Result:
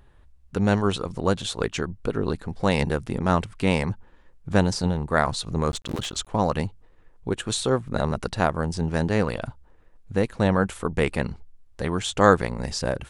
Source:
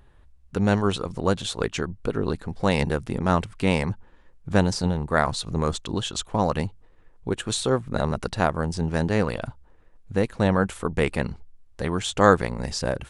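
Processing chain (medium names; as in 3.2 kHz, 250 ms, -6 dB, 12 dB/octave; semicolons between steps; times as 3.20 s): 5.70–6.28 s: cycle switcher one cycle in 3, muted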